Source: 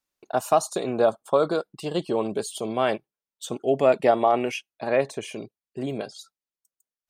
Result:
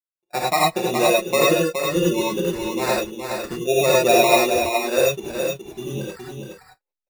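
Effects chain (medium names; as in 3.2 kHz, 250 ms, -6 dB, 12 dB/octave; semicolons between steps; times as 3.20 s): spectral noise reduction 27 dB; low-pass that closes with the level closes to 2.1 kHz, closed at -20 dBFS; comb 5.6 ms, depth 94%; in parallel at -4 dB: hysteresis with a dead band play -32.5 dBFS; on the sum: sample-and-hold 14×; on a send: delay 419 ms -6 dB; on the sum: gated-style reverb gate 120 ms rising, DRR -3.5 dB; trim -7 dB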